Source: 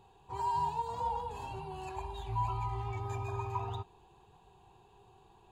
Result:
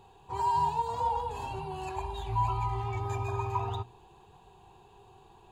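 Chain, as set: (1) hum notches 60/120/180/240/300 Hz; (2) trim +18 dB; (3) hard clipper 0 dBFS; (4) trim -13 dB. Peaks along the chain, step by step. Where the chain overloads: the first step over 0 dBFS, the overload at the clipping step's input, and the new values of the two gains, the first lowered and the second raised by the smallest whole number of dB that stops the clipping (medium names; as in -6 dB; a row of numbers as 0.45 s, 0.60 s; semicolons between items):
-23.0 dBFS, -5.0 dBFS, -5.0 dBFS, -18.0 dBFS; nothing clips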